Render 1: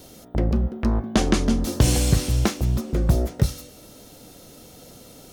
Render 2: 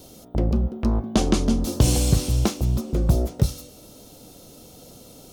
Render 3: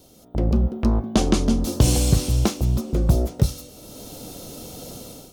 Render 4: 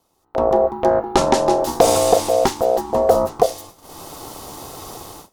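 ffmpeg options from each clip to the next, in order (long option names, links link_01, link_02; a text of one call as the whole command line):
ffmpeg -i in.wav -af "equalizer=frequency=1800:width=1.8:gain=-8.5" out.wav
ffmpeg -i in.wav -af "dynaudnorm=framelen=160:gausssize=5:maxgain=14.5dB,volume=-6dB" out.wav
ffmpeg -i in.wav -af "aeval=exprs='val(0)*sin(2*PI*590*n/s)':channel_layout=same,agate=range=-17dB:threshold=-44dB:ratio=16:detection=peak,volume=5.5dB" out.wav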